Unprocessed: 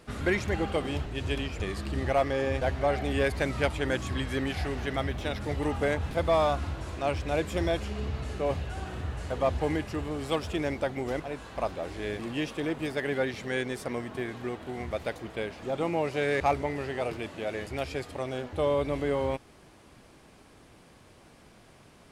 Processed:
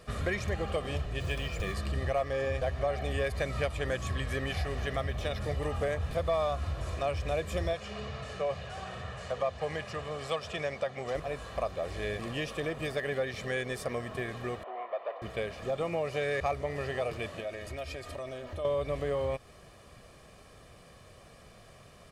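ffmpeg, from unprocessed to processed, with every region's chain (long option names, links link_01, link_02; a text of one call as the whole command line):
ffmpeg -i in.wav -filter_complex "[0:a]asettb=1/sr,asplit=3[link_01][link_02][link_03];[link_01]atrim=end=1.204[link_04];[link_02]atrim=start=1.2:end=1.74,asetpts=PTS-STARTPTS,afade=type=in:duration=0.004:curve=qsin,afade=type=out:start_time=0.536:duration=0.004:curve=qsin,aecho=1:1:5.9:0.34,atrim=end_sample=23814,acrusher=bits=7:mode=log:mix=0:aa=0.000001[link_05];[link_03]atrim=start=1.736[link_06];[link_04][link_05]acrossfade=duration=0.004:curve1=hsin:curve2=qsin[link_07];[link_07][link_06]acrossfade=duration=0.004:curve1=qsin:curve2=hsin,asettb=1/sr,asplit=3[link_08][link_09][link_10];[link_08]atrim=end=7.734[link_11];[link_09]atrim=start=7.73:end=11.15,asetpts=PTS-STARTPTS,afade=type=in:duration=0.004:curve=qsin,afade=type=out:start_time=3.416:duration=0.004:curve=qsin,highpass=160,lowpass=7500,equalizer=frequency=310:width=1.9:gain=-9.5[link_12];[link_10]atrim=start=11.146[link_13];[link_11][link_12]acrossfade=duration=0.004:curve1=hsin:curve2=qsin[link_14];[link_14][link_13]acrossfade=duration=0.004:curve1=qsin:curve2=hsin,asettb=1/sr,asplit=3[link_15][link_16][link_17];[link_15]atrim=end=14.634[link_18];[link_16]atrim=start=14.63:end=15.22,asetpts=PTS-STARTPTS,afade=type=in:duration=0.004:curve=qsin,afade=type=out:start_time=0.586:duration=0.004:curve=qsin,asoftclip=type=hard:threshold=-33dB,highpass=frequency=430:width=0.5412,highpass=frequency=430:width=1.3066,equalizer=frequency=440:width_type=q:width=4:gain=-3,equalizer=frequency=680:width_type=q:width=4:gain=5,equalizer=frequency=1000:width_type=q:width=4:gain=7,equalizer=frequency=1600:width_type=q:width=4:gain=-7,equalizer=frequency=2300:width_type=q:width=4:gain=-4,lowpass=frequency=2500:width=0.5412,lowpass=frequency=2500:width=1.3066[link_19];[link_17]atrim=start=15.216[link_20];[link_18][link_19]acrossfade=duration=0.004:curve1=hsin:curve2=qsin[link_21];[link_21][link_20]acrossfade=duration=0.004:curve1=qsin:curve2=hsin,asettb=1/sr,asplit=3[link_22][link_23][link_24];[link_22]atrim=end=17.404[link_25];[link_23]atrim=start=17.4:end=18.65,asetpts=PTS-STARTPTS,afade=type=in:duration=0.004:curve=qsin,afade=type=out:start_time=1.246:duration=0.004:curve=qsin,acompressor=threshold=-38dB:ratio=4:attack=3.2:release=140:knee=1:detection=peak,aecho=1:1:3.2:0.44,atrim=end_sample=55125[link_26];[link_24]atrim=start=18.646[link_27];[link_25][link_26]acrossfade=duration=0.004:curve1=hsin:curve2=qsin[link_28];[link_28][link_27]acrossfade=duration=0.004:curve1=qsin:curve2=hsin,aecho=1:1:1.7:0.57,acompressor=threshold=-30dB:ratio=2.5" out.wav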